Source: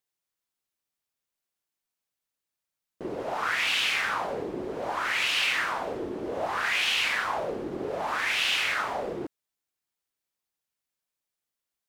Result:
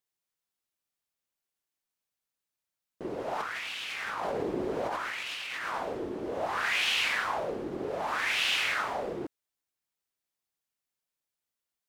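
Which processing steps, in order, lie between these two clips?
3.4–5.74 negative-ratio compressor -33 dBFS, ratio -1; gain -2 dB

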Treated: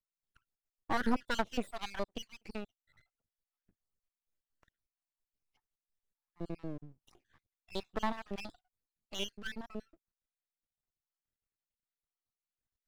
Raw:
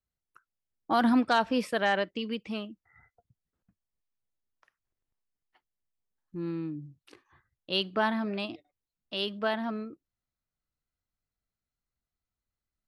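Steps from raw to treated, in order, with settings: random spectral dropouts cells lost 60%; half-wave rectifier; gain -1 dB

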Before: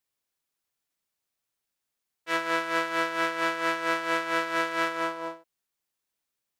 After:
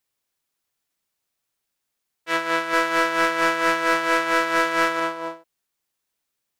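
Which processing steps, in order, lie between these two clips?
2.73–5 sample leveller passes 1; gain +4.5 dB

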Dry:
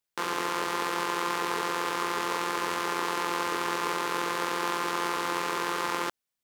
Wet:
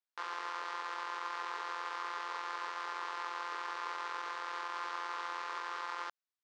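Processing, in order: tracing distortion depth 0.06 ms; HPF 1400 Hz 12 dB/oct; bell 2600 Hz -12 dB 1.9 oct; limiter -24.5 dBFS, peak gain reduction 5 dB; Bessel low-pass 3300 Hz, order 4; gain +3 dB

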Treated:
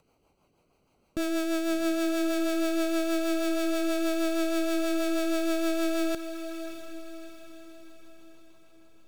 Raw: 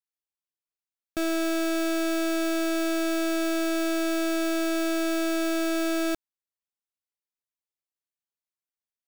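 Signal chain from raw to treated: Wiener smoothing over 25 samples; upward compressor, threshold -35 dBFS; rotary speaker horn 6.3 Hz; diffused feedback echo 0.659 s, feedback 49%, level -10 dB

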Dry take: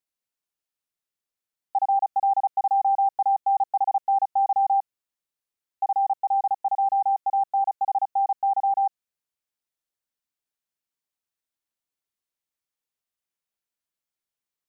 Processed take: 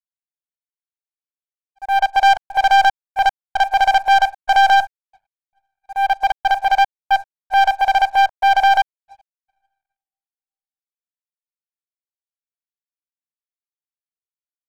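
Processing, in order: tracing distortion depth 0.2 ms; low-pass opened by the level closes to 600 Hz, open at -18.5 dBFS; auto swell 0.349 s; bell 660 Hz +13.5 dB 0.79 oct; transient shaper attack -2 dB, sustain +7 dB; on a send at -11.5 dB: reverb RT60 2.7 s, pre-delay 57 ms; on the sum: step gate "xxx.xxx..x..xxx" 114 bpm -60 dB; sample leveller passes 3; low shelf 480 Hz -9 dB; upward expander 2.5:1, over -35 dBFS

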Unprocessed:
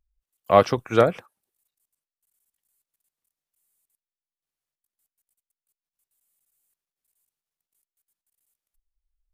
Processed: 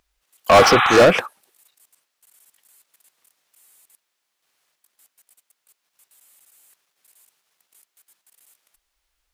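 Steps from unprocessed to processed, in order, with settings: overdrive pedal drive 33 dB, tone 4900 Hz, clips at -1 dBFS; spectral repair 0.65–1.01, 720–4000 Hz; gain -2 dB

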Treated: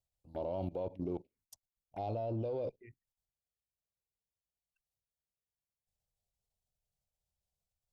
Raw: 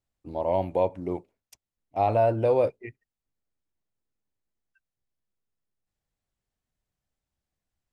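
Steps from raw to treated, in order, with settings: bell 1300 Hz -10.5 dB 0.9 oct; level quantiser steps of 18 dB; added harmonics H 5 -27 dB, 8 -34 dB, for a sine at -25.5 dBFS; envelope phaser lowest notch 290 Hz, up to 1800 Hz, full sweep at -35.5 dBFS

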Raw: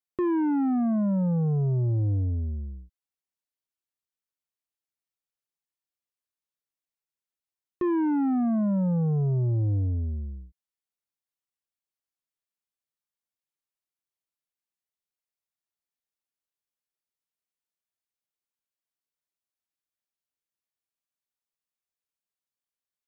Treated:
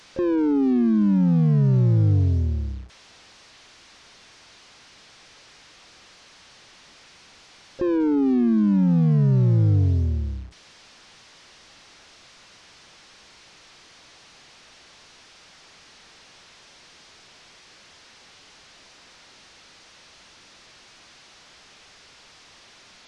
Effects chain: delta modulation 32 kbps, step -50.5 dBFS; harmoniser +7 st -10 dB; gain +6.5 dB

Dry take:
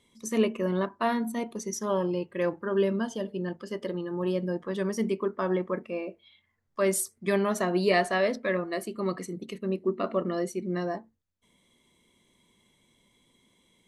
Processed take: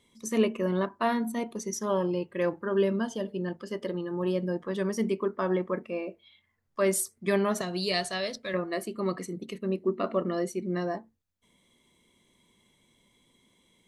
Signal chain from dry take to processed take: 7.61–8.54 graphic EQ 125/250/500/1000/2000/4000/8000 Hz +6/-11/-5/-7/-6/+7/+4 dB

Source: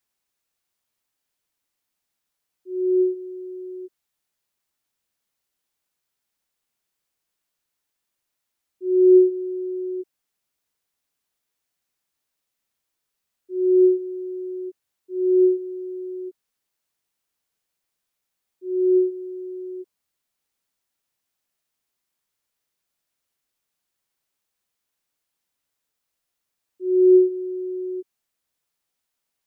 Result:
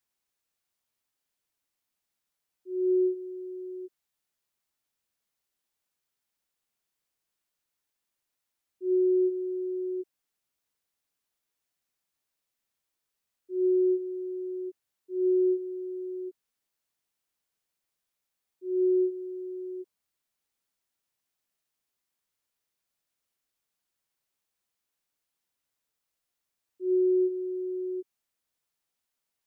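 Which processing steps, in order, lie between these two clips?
limiter -16 dBFS, peak gain reduction 9 dB; gain -4 dB

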